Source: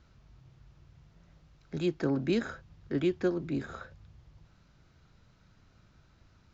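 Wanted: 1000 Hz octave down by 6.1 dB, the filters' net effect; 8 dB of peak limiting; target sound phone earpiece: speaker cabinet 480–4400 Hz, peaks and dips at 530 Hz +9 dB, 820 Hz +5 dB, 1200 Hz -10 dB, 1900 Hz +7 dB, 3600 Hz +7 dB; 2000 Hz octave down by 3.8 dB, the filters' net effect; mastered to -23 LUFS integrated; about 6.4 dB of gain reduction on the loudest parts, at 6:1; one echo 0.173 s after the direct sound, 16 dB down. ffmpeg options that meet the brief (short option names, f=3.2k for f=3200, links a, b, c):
-af "equalizer=f=1k:t=o:g=-8.5,equalizer=f=2k:t=o:g=-4.5,acompressor=threshold=-31dB:ratio=6,alimiter=level_in=7dB:limit=-24dB:level=0:latency=1,volume=-7dB,highpass=480,equalizer=f=530:t=q:w=4:g=9,equalizer=f=820:t=q:w=4:g=5,equalizer=f=1.2k:t=q:w=4:g=-10,equalizer=f=1.9k:t=q:w=4:g=7,equalizer=f=3.6k:t=q:w=4:g=7,lowpass=f=4.4k:w=0.5412,lowpass=f=4.4k:w=1.3066,aecho=1:1:173:0.158,volume=24dB"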